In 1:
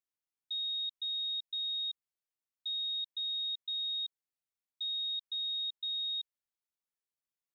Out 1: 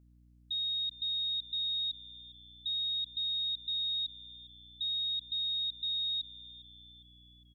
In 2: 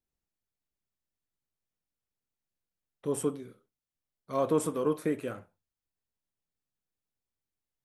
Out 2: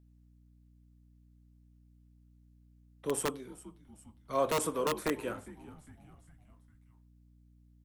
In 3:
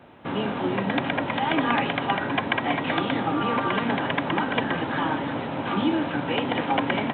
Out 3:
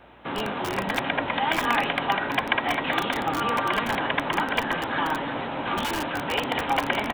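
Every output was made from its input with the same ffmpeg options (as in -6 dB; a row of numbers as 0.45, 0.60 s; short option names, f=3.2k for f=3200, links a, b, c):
-filter_complex "[0:a]lowshelf=f=360:g=-9,asplit=5[a][b][c][d][e];[b]adelay=406,afreqshift=-100,volume=-18dB[f];[c]adelay=812,afreqshift=-200,volume=-23.5dB[g];[d]adelay=1218,afreqshift=-300,volume=-29dB[h];[e]adelay=1624,afreqshift=-400,volume=-34.5dB[i];[a][f][g][h][i]amix=inputs=5:normalize=0,acrossover=split=130|520|1300[j][k][l][m];[k]aeval=exprs='(mod(23.7*val(0)+1,2)-1)/23.7':c=same[n];[j][n][l][m]amix=inputs=4:normalize=0,aeval=exprs='val(0)+0.000794*(sin(2*PI*60*n/s)+sin(2*PI*2*60*n/s)/2+sin(2*PI*3*60*n/s)/3+sin(2*PI*4*60*n/s)/4+sin(2*PI*5*60*n/s)/5)':c=same,volume=2dB"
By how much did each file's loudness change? +2.0, -2.5, -0.5 LU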